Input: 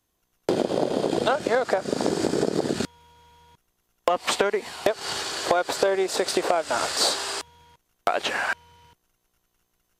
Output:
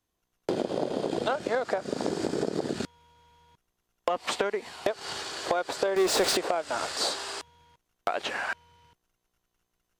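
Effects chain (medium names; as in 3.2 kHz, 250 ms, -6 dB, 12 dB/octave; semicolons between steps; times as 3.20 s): treble shelf 10 kHz -7.5 dB; 5.96–6.37 s: power-law waveshaper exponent 0.5; trim -5.5 dB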